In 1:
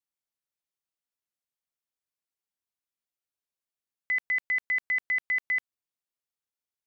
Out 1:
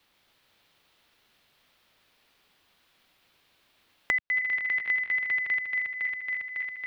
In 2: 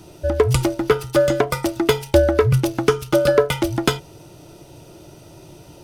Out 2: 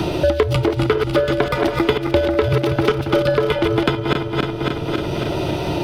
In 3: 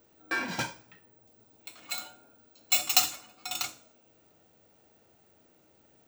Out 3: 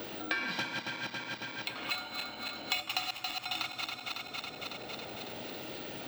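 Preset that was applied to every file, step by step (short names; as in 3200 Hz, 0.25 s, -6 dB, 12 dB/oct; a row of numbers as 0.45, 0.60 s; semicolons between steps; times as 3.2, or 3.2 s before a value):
regenerating reverse delay 0.138 s, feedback 69%, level -5.5 dB; resonant high shelf 5100 Hz -11 dB, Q 1.5; three-band squash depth 100%; gain -1.5 dB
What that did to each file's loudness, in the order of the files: +0.5, 0.0, -7.5 LU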